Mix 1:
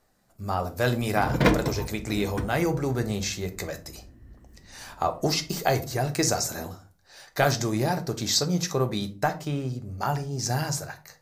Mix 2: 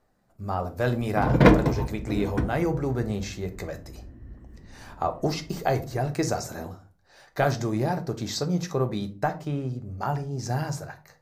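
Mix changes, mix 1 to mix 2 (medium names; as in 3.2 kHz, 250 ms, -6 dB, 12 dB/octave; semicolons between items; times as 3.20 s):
background +5.5 dB; master: add treble shelf 2.5 kHz -11 dB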